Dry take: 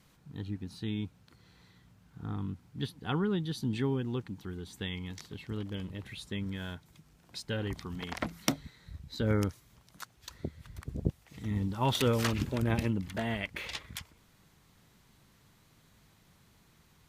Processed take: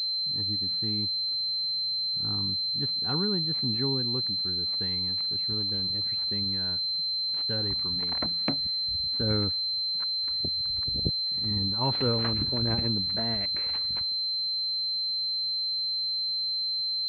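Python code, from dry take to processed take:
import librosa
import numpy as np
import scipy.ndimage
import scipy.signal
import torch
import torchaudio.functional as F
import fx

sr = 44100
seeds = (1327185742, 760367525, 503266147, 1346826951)

y = fx.pwm(x, sr, carrier_hz=4100.0)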